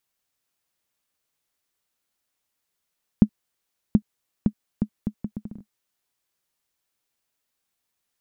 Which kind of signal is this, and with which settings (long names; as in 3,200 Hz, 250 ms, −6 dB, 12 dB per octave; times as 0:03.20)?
bouncing ball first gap 0.73 s, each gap 0.7, 211 Hz, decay 71 ms −2.5 dBFS